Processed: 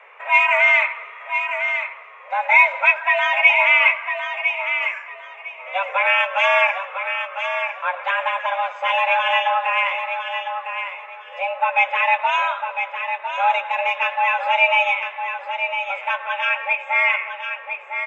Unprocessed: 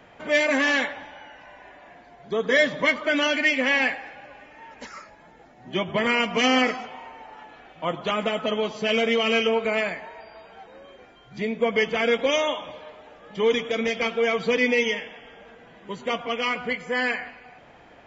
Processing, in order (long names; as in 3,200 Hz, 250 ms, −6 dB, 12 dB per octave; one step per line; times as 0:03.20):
high shelf with overshoot 2,800 Hz −12.5 dB, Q 3
repeating echo 1,004 ms, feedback 23%, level −7.5 dB
frequency shifter +380 Hz
level +2 dB